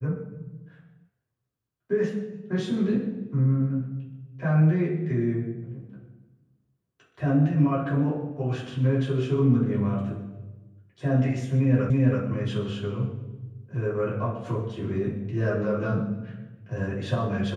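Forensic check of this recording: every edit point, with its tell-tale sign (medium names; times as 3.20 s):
11.90 s: repeat of the last 0.33 s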